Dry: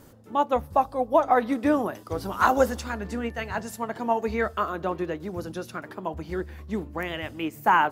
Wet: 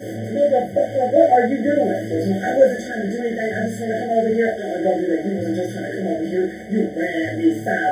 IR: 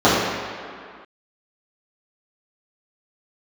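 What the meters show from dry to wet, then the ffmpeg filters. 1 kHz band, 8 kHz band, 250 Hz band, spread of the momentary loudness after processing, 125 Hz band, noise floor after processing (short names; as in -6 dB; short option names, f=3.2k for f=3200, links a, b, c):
+1.5 dB, +3.0 dB, +9.0 dB, 8 LU, +8.0 dB, -31 dBFS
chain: -filter_complex "[0:a]aeval=exprs='val(0)+0.5*0.0376*sgn(val(0))':c=same[a];[1:a]atrim=start_sample=2205,afade=t=out:st=0.2:d=0.01,atrim=end_sample=9261,asetrate=79380,aresample=44100[b];[a][b]afir=irnorm=-1:irlink=0,afftfilt=real='re*eq(mod(floor(b*sr/1024/740),2),0)':imag='im*eq(mod(floor(b*sr/1024/740),2),0)':win_size=1024:overlap=0.75,volume=-17.5dB"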